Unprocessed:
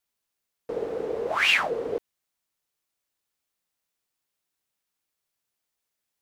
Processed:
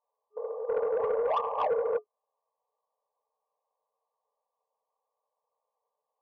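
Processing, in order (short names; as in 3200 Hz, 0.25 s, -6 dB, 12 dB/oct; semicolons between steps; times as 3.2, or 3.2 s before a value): half-waves squared off; notch 690 Hz, Q 18; on a send: reverse echo 0.323 s -11.5 dB; on the sum: FFT band-pass 420–1200 Hz; in parallel at +2 dB: compressor 6:1, threshold -41 dBFS, peak gain reduction 16.5 dB; on the sum: soft clip -21 dBFS, distortion -17 dB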